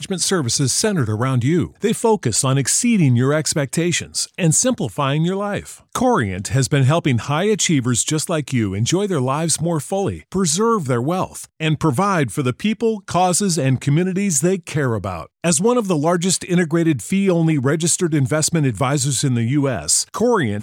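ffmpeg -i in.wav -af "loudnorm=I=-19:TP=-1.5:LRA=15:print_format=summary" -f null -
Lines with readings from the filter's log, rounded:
Input Integrated:    -18.1 LUFS
Input True Peak:      -3.0 dBTP
Input LRA:             1.8 LU
Input Threshold:     -28.1 LUFS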